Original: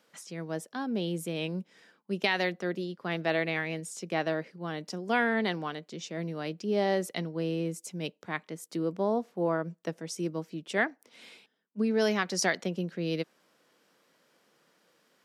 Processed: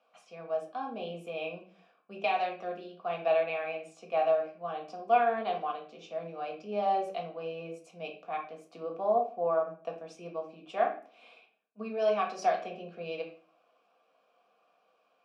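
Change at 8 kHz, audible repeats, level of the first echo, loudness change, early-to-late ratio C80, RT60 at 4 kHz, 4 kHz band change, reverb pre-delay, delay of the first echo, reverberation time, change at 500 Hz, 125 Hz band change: under -15 dB, no echo, no echo, -1.0 dB, 13.5 dB, 0.35 s, -9.0 dB, 4 ms, no echo, 0.40 s, +1.0 dB, -14.5 dB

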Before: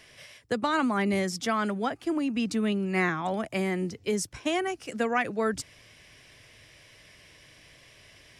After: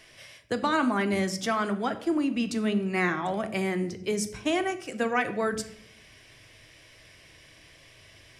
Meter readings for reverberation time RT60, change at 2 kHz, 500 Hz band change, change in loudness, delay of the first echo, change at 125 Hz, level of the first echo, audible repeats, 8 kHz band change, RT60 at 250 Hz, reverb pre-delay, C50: 0.70 s, +0.5 dB, +0.5 dB, +0.5 dB, no echo, 0.0 dB, no echo, no echo, +0.5 dB, 1.0 s, 3 ms, 13.0 dB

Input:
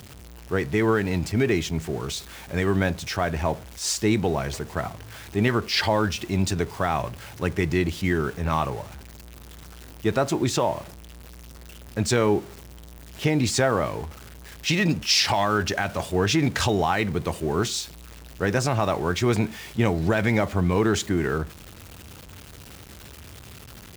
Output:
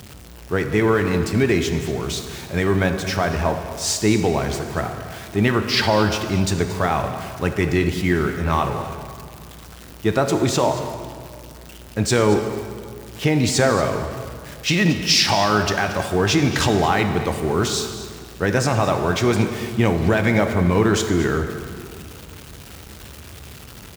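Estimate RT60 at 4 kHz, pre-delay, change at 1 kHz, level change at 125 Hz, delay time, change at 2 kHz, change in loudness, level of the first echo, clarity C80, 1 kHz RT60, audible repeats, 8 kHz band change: 1.7 s, 21 ms, +4.5 dB, +4.0 dB, 229 ms, +4.5 dB, +4.0 dB, -16.0 dB, 8.0 dB, 2.2 s, 1, +4.0 dB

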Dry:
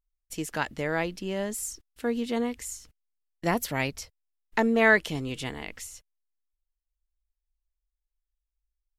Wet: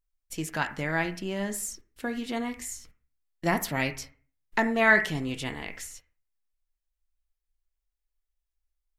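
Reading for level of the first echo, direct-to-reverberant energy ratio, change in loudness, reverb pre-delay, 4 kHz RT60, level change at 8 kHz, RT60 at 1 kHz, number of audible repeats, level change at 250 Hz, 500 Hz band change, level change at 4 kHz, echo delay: no echo, 5.0 dB, -0.5 dB, 5 ms, 0.35 s, 0.0 dB, 0.40 s, no echo, -1.5 dB, -3.0 dB, 0.0 dB, no echo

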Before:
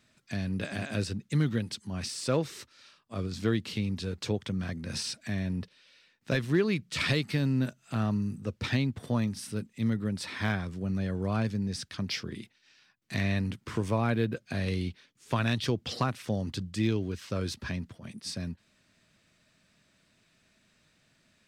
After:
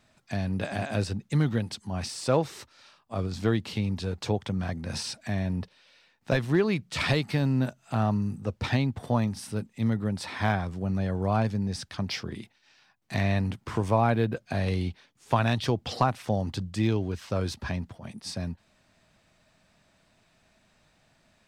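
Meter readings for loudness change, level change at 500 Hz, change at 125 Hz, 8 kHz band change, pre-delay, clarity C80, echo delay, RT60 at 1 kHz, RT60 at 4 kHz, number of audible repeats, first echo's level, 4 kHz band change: +3.0 dB, +4.0 dB, +3.0 dB, 0.0 dB, no reverb, no reverb, no echo, no reverb, no reverb, no echo, no echo, +0.5 dB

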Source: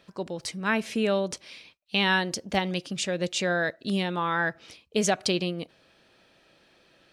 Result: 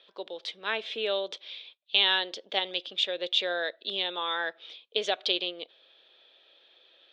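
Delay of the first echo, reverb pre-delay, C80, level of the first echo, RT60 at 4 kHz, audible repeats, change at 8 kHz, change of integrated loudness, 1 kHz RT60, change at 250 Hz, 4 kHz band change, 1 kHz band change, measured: no echo, no reverb, no reverb, no echo, no reverb, no echo, -16.5 dB, -1.5 dB, no reverb, -16.0 dB, +5.0 dB, -5.5 dB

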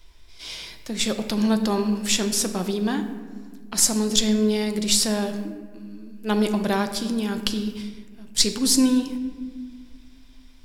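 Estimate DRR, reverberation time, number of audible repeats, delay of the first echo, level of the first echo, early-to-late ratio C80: 7.0 dB, 1.6 s, no echo, no echo, no echo, 11.0 dB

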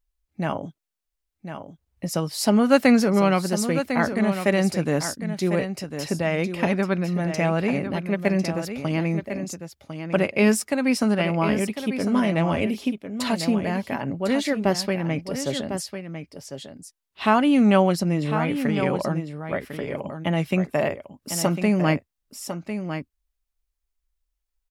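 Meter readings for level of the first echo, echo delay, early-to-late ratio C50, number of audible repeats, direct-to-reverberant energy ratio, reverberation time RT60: -9.0 dB, 1051 ms, no reverb, 1, no reverb, no reverb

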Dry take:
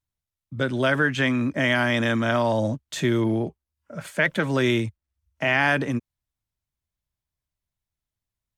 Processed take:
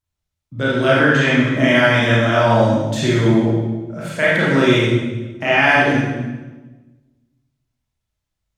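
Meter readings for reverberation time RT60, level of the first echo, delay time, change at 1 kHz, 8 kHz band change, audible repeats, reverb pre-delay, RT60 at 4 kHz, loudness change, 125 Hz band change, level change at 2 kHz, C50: 1.2 s, no echo, no echo, +9.0 dB, +6.0 dB, no echo, 28 ms, 1.0 s, +7.5 dB, +9.5 dB, +7.5 dB, -1.5 dB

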